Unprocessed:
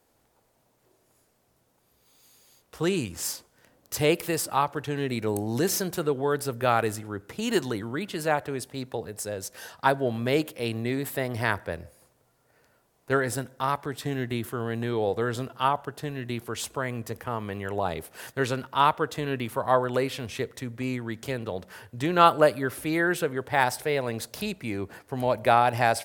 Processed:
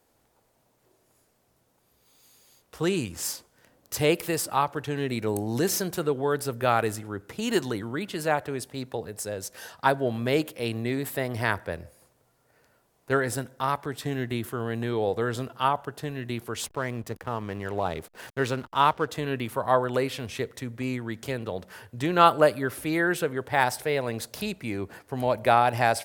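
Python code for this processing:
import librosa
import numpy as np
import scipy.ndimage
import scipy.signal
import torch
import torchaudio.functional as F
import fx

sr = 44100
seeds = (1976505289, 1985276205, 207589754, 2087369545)

y = fx.backlash(x, sr, play_db=-39.5, at=(16.66, 19.08))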